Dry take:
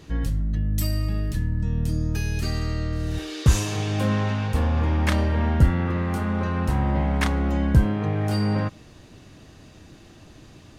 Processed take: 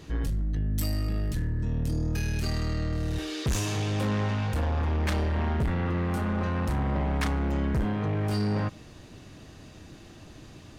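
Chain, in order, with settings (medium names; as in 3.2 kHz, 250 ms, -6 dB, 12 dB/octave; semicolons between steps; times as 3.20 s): saturation -23 dBFS, distortion -8 dB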